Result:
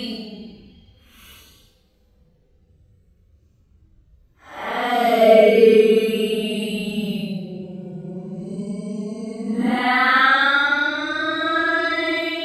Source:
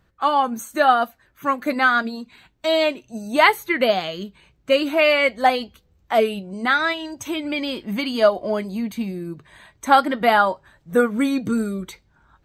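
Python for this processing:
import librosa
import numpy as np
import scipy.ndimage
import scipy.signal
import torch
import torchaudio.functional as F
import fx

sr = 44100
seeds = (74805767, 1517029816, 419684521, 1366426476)

y = fx.rotary(x, sr, hz=1.2)
y = fx.paulstretch(y, sr, seeds[0], factor=9.4, window_s=0.05, from_s=5.62)
y = y * librosa.db_to_amplitude(5.5)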